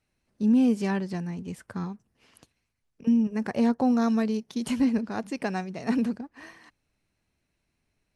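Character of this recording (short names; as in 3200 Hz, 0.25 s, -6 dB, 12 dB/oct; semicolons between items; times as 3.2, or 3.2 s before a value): noise floor -78 dBFS; spectral tilt -6.5 dB/oct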